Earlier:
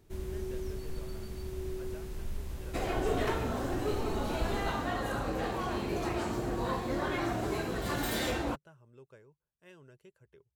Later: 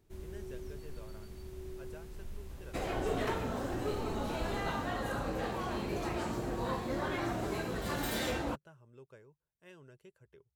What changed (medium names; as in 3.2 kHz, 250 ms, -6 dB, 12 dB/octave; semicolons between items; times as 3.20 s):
first sound -7.0 dB; reverb: off